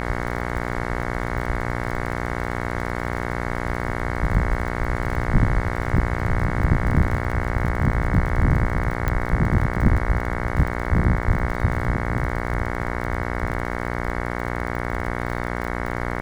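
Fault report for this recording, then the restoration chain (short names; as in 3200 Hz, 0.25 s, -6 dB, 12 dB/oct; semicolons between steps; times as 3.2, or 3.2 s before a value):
buzz 60 Hz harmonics 37 -27 dBFS
crackle 32/s -28 dBFS
9.08 pop -10 dBFS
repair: de-click; de-hum 60 Hz, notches 37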